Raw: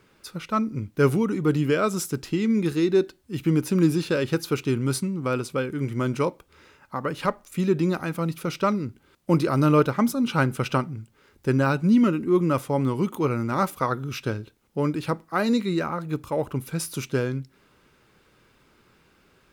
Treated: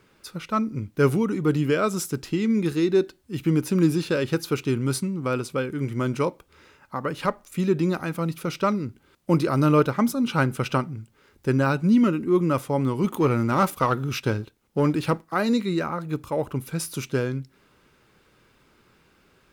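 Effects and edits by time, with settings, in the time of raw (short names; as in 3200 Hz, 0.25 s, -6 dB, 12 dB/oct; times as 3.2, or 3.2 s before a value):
13.04–15.34 sample leveller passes 1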